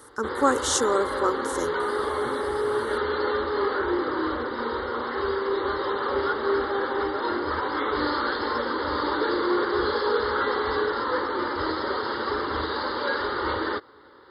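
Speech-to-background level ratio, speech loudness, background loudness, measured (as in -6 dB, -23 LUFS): 0.5 dB, -26.0 LUFS, -26.5 LUFS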